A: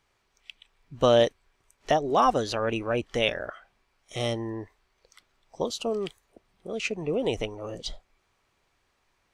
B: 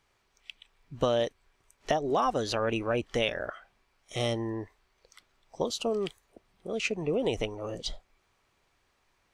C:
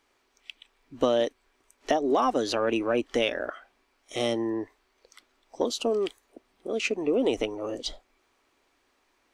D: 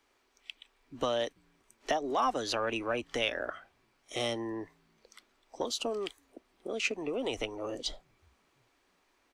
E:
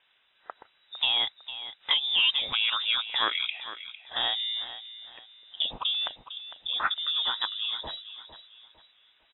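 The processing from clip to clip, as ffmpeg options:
-af "acompressor=threshold=-23dB:ratio=6"
-filter_complex "[0:a]lowshelf=f=210:t=q:w=3:g=-7.5,asplit=2[a][b];[b]asoftclip=type=tanh:threshold=-20.5dB,volume=-11dB[c];[a][c]amix=inputs=2:normalize=0"
-filter_complex "[0:a]acrossover=split=150|670|3200[a][b][c][d];[a]asplit=4[e][f][g][h];[f]adelay=334,afreqshift=52,volume=-20dB[i];[g]adelay=668,afreqshift=104,volume=-29.4dB[j];[h]adelay=1002,afreqshift=156,volume=-38.7dB[k];[e][i][j][k]amix=inputs=4:normalize=0[l];[b]acompressor=threshold=-35dB:ratio=6[m];[l][m][c][d]amix=inputs=4:normalize=0,volume=-2dB"
-af "aecho=1:1:454|908|1362:0.224|0.0761|0.0259,lowpass=f=3.3k:t=q:w=0.5098,lowpass=f=3.3k:t=q:w=0.6013,lowpass=f=3.3k:t=q:w=0.9,lowpass=f=3.3k:t=q:w=2.563,afreqshift=-3900,volume=5dB"

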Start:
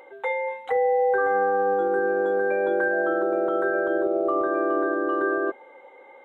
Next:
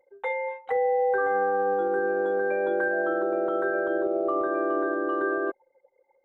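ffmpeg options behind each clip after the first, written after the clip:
-af "anlmdn=2.51,volume=-2.5dB"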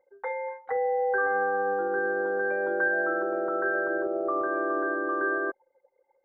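-af "highshelf=f=2.2k:t=q:w=3:g=-9.5,volume=-3.5dB"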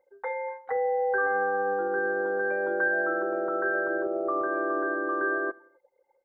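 -af "aecho=1:1:87|174|261:0.0668|0.0334|0.0167"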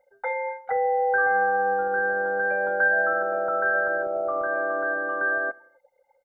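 -af "aecho=1:1:1.4:0.83,volume=1.5dB"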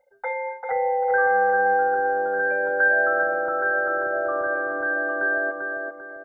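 -filter_complex "[0:a]asplit=2[a][b];[b]adelay=393,lowpass=f=1.5k:p=1,volume=-3dB,asplit=2[c][d];[d]adelay=393,lowpass=f=1.5k:p=1,volume=0.44,asplit=2[e][f];[f]adelay=393,lowpass=f=1.5k:p=1,volume=0.44,asplit=2[g][h];[h]adelay=393,lowpass=f=1.5k:p=1,volume=0.44,asplit=2[i][j];[j]adelay=393,lowpass=f=1.5k:p=1,volume=0.44,asplit=2[k][l];[l]adelay=393,lowpass=f=1.5k:p=1,volume=0.44[m];[a][c][e][g][i][k][m]amix=inputs=7:normalize=0"

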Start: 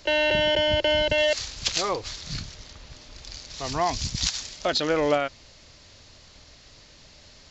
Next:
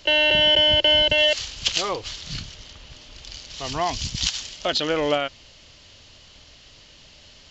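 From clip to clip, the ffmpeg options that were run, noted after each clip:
-af "equalizer=f=3k:w=4.1:g=10.5"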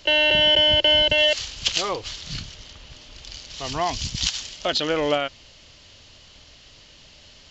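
-af anull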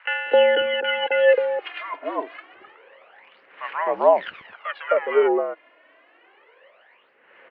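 -filter_complex "[0:a]aphaser=in_gain=1:out_gain=1:delay=2.8:decay=0.71:speed=0.27:type=sinusoidal,highpass=f=510:t=q:w=0.5412,highpass=f=510:t=q:w=1.307,lowpass=f=2.1k:t=q:w=0.5176,lowpass=f=2.1k:t=q:w=0.7071,lowpass=f=2.1k:t=q:w=1.932,afreqshift=-67,acrossover=split=1100[a][b];[a]adelay=260[c];[c][b]amix=inputs=2:normalize=0,volume=3dB"

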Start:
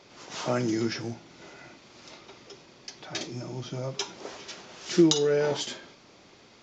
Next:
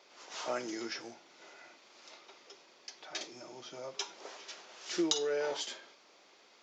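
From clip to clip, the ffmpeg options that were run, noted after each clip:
-af "highpass=470,volume=-5.5dB"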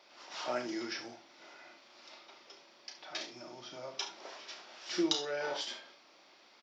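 -af "superequalizer=7b=0.562:15b=0.355,aecho=1:1:33|70:0.422|0.251"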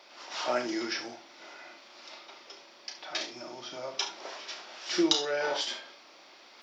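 -af "highpass=f=190:p=1,areverse,acompressor=mode=upward:threshold=-57dB:ratio=2.5,areverse,volume=6.5dB"

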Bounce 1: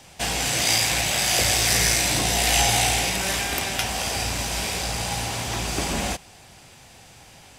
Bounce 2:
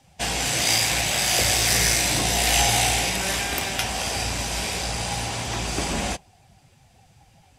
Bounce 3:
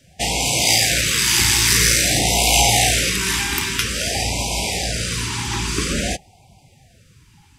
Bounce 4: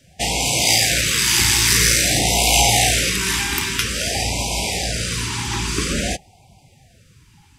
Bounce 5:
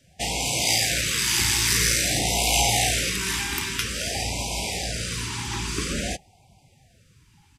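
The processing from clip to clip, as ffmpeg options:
-af "afftdn=nr=13:nf=-42"
-af "afftfilt=real='re*(1-between(b*sr/1024,560*pow(1500/560,0.5+0.5*sin(2*PI*0.5*pts/sr))/1.41,560*pow(1500/560,0.5+0.5*sin(2*PI*0.5*pts/sr))*1.41))':imag='im*(1-between(b*sr/1024,560*pow(1500/560,0.5+0.5*sin(2*PI*0.5*pts/sr))/1.41,560*pow(1500/560,0.5+0.5*sin(2*PI*0.5*pts/sr))*1.41))':win_size=1024:overlap=0.75,volume=5dB"
-af anull
-af "aresample=32000,aresample=44100,volume=-6dB"

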